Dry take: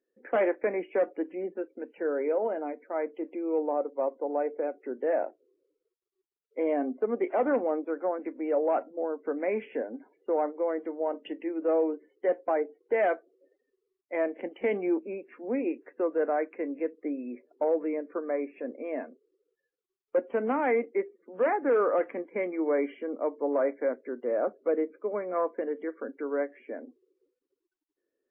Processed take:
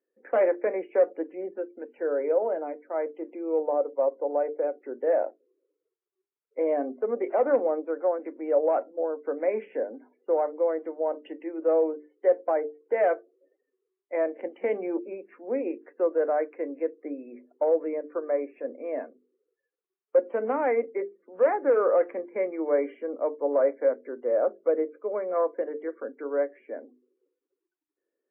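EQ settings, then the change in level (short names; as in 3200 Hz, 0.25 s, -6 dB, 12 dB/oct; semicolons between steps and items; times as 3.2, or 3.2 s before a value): notches 50/100/150/200/250/300/350/400/450 Hz; dynamic EQ 540 Hz, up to +6 dB, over -41 dBFS, Q 3.3; BPF 260–2100 Hz; 0.0 dB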